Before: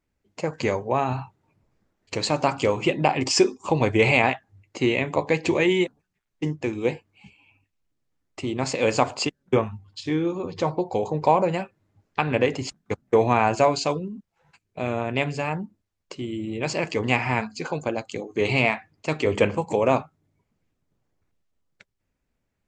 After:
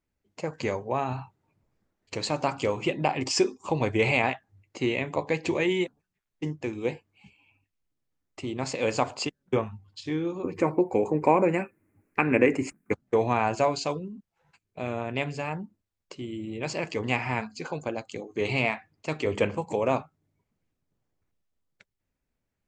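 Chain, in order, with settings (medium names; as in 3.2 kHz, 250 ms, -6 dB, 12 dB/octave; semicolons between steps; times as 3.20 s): 10.44–12.93 s: FFT filter 140 Hz 0 dB, 300 Hz +11 dB, 710 Hz 0 dB, 2.4 kHz +9 dB, 3.4 kHz -14 dB, 6 kHz -4 dB, 10 kHz +13 dB; trim -5 dB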